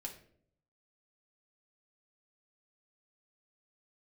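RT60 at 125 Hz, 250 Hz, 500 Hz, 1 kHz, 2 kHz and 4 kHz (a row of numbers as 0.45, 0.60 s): 1.0, 0.80, 0.75, 0.50, 0.45, 0.40 s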